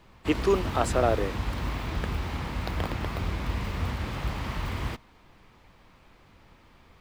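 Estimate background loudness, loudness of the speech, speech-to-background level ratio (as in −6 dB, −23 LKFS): −32.5 LKFS, −27.5 LKFS, 5.0 dB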